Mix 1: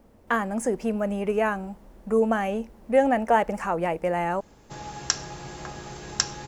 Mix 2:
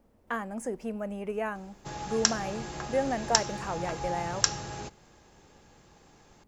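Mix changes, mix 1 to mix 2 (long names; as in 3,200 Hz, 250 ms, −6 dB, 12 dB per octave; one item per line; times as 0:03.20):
speech −8.5 dB
background: entry −2.85 s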